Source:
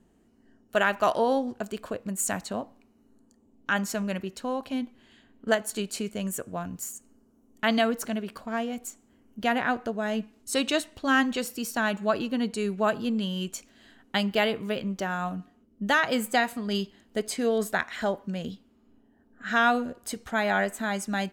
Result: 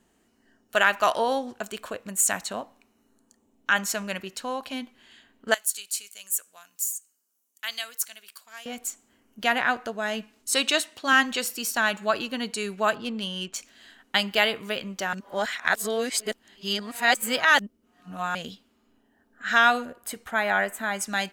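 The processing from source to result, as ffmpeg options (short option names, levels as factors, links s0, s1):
-filter_complex "[0:a]asettb=1/sr,asplit=3[s0][s1][s2];[s0]atrim=end=1.074[s3];[s1]atrim=start=1.07:end=3.91,asetpts=PTS-STARTPTS,afade=t=in:d=0.004:c=qsin,afade=t=out:st=2.836:d=0.004:c=qsin,bandreject=f=4700:w=13[s4];[s2]atrim=start=3.906[s5];[s3][s4]acrossfade=d=0.004:c1=hsin:c2=qsin[s6];[s6][s5]acrossfade=d=0.004:c1=qsin:c2=hsin,asettb=1/sr,asplit=3[s7][s8][s9];[s7]atrim=end=5.544[s10];[s8]atrim=start=5.54:end=8.66,asetpts=PTS-STARTPTS,afade=t=in:d=0.004:c=qsin,afade=t=out:st=3.116:d=0.004:c=qsin,aderivative[s11];[s9]atrim=start=8.656[s12];[s10][s11]acrossfade=d=0.004:c1=hsin:c2=qsin[s13];[s13][s12]acrossfade=d=0.004:c1=qsin:c2=hsin,asettb=1/sr,asplit=3[s14][s15][s16];[s14]atrim=end=10.544[s17];[s15]atrim=start=10.54:end=11.13,asetpts=PTS-STARTPTS,afade=t=in:d=0.004:c=qsin,afade=t=out:st=0.586:d=0.004:c=qsin,highpass=140[s18];[s16]atrim=start=11.126[s19];[s17][s18]acrossfade=d=0.004:c1=hsin:c2=qsin[s20];[s20][s19]acrossfade=d=0.004:c1=qsin:c2=hsin,asettb=1/sr,asplit=3[s21][s22][s23];[s21]atrim=end=12.954[s24];[s22]atrim=start=12.95:end=13.56,asetpts=PTS-STARTPTS,afade=t=in:d=0.004:c=qsin,afade=t=out:st=0.606:d=0.004:c=qsin,adynamicsmooth=sensitivity=6.5:basefreq=2900[s25];[s23]atrim=start=13.556[s26];[s24][s25]acrossfade=d=0.004:c1=hsin:c2=qsin[s27];[s27][s26]acrossfade=d=0.004:c1=qsin:c2=hsin,asettb=1/sr,asplit=3[s28][s29][s30];[s28]atrim=end=19.854[s31];[s29]atrim=start=19.85:end=21.01,asetpts=PTS-STARTPTS,afade=t=in:d=0.004:c=qsin,afade=t=out:st=1.156:d=0.004:c=qsin,equalizer=f=5300:w=0.82:g=-10[s32];[s30]atrim=start=21.006[s33];[s31][s32]acrossfade=d=0.004:c1=hsin:c2=qsin[s34];[s34][s33]acrossfade=d=0.004:c1=qsin:c2=hsin,asplit=3[s35][s36][s37];[s35]atrim=end=15.132[s38];[s36]atrim=start=15.128:end=18.352,asetpts=PTS-STARTPTS,areverse[s39];[s37]atrim=start=18.348[s40];[s38][s39]acrossfade=d=0.004:c1=hsin:c2=hsin[s41];[s41][s40]acrossfade=d=0.004:c1=hsin:c2=hsin,tiltshelf=f=650:g=-7"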